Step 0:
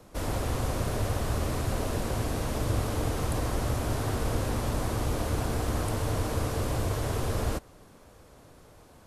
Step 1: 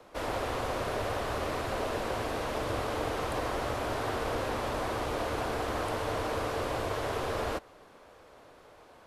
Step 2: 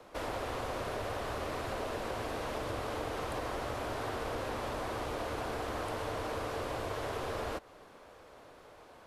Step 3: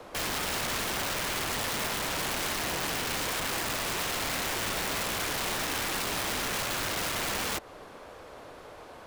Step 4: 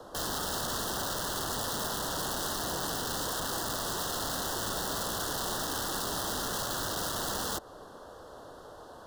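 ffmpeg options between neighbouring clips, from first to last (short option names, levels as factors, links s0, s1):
-filter_complex "[0:a]acrossover=split=350 4300:gain=0.2 1 0.251[s0][s1][s2];[s0][s1][s2]amix=inputs=3:normalize=0,volume=1.41"
-af "acompressor=threshold=0.0141:ratio=2"
-af "aeval=exprs='(mod(53.1*val(0)+1,2)-1)/53.1':c=same,volume=2.51"
-af "asuperstop=centerf=2300:order=4:qfactor=1.4,volume=0.891"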